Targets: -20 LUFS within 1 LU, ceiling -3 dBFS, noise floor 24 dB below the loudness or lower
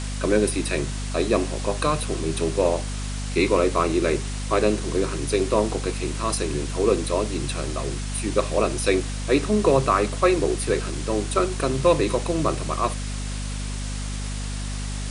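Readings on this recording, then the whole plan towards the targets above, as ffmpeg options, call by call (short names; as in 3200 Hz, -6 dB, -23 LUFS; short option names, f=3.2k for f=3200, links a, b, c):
hum 50 Hz; harmonics up to 250 Hz; hum level -27 dBFS; noise floor -29 dBFS; noise floor target -48 dBFS; loudness -24.0 LUFS; peak -6.0 dBFS; loudness target -20.0 LUFS
-> -af "bandreject=f=50:t=h:w=4,bandreject=f=100:t=h:w=4,bandreject=f=150:t=h:w=4,bandreject=f=200:t=h:w=4,bandreject=f=250:t=h:w=4"
-af "afftdn=nr=19:nf=-29"
-af "volume=4dB,alimiter=limit=-3dB:level=0:latency=1"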